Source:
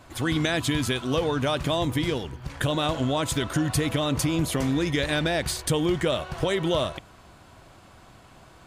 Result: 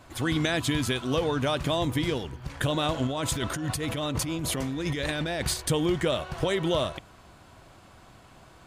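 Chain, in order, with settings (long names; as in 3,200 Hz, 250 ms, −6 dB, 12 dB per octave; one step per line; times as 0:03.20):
0:03.07–0:05.54: compressor whose output falls as the input rises −28 dBFS, ratio −1
level −1.5 dB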